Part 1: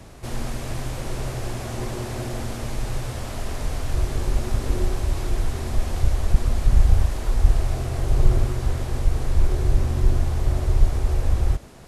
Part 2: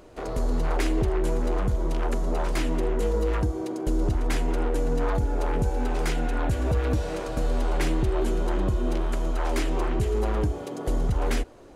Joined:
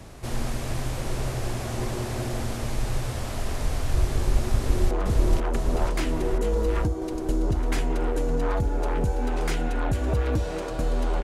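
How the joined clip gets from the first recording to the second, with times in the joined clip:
part 1
4.56–4.91 echo throw 0.49 s, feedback 70%, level -2 dB
4.91 switch to part 2 from 1.49 s

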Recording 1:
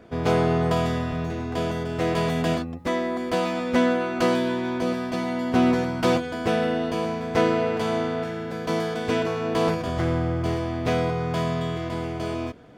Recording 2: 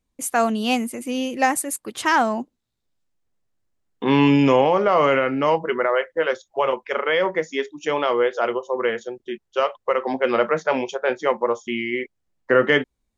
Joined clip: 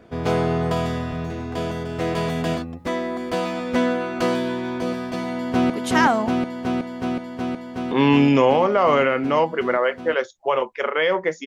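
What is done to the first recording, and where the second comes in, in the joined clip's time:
recording 1
5.32–5.7 echo throw 0.37 s, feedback 85%, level -1.5 dB
5.7 switch to recording 2 from 1.81 s

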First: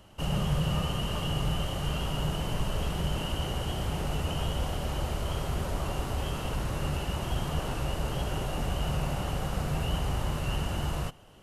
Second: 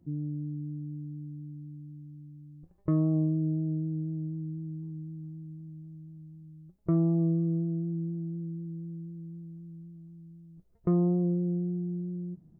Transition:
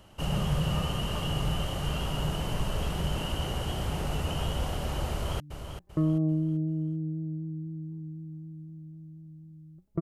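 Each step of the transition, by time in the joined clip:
first
5.11–5.4 echo throw 0.39 s, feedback 35%, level -8.5 dB
5.4 switch to second from 2.31 s

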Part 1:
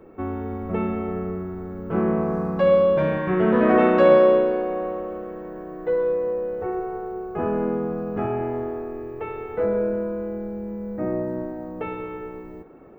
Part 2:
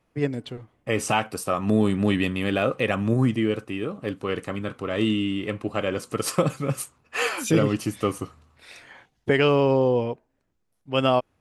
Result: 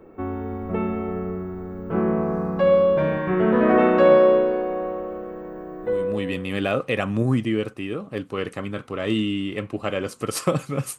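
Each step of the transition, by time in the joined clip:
part 1
6.22 switch to part 2 from 2.13 s, crossfade 0.82 s linear

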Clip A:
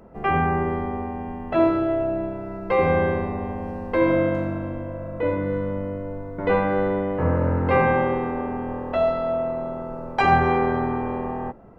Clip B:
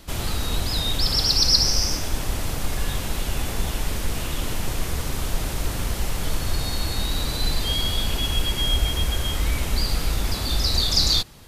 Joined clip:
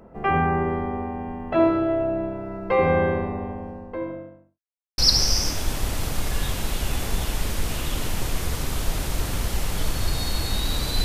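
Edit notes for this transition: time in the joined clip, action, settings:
clip A
3.01–4.6 studio fade out
4.6–4.98 mute
4.98 switch to clip B from 1.44 s

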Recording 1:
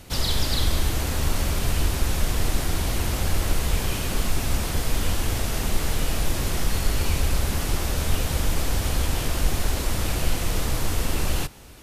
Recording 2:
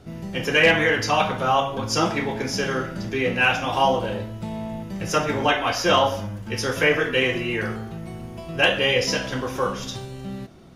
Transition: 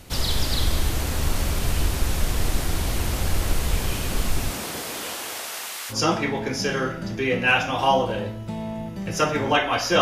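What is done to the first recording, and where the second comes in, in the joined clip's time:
recording 1
4.49–5.95 HPF 170 Hz -> 1400 Hz
5.92 switch to recording 2 from 1.86 s, crossfade 0.06 s

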